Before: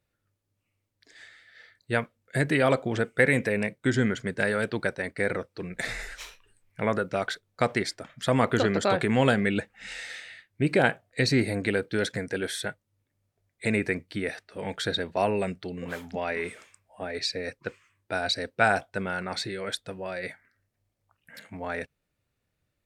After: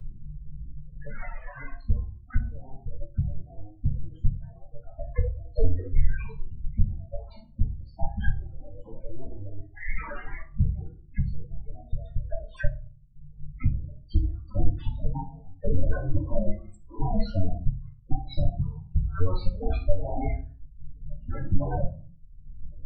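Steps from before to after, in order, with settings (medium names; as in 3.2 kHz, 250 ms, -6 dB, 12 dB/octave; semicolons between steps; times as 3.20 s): cycle switcher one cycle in 2, inverted; reverb removal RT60 0.64 s; tilt EQ -3 dB/octave; inverted gate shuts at -18 dBFS, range -41 dB; phaser 0.28 Hz, delay 2.1 ms, feedback 22%; loudest bins only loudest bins 8; dynamic bell 120 Hz, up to -4 dB, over -56 dBFS, Q 5.9; reverberation RT60 0.35 s, pre-delay 4 ms, DRR -5.5 dB; three bands compressed up and down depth 70%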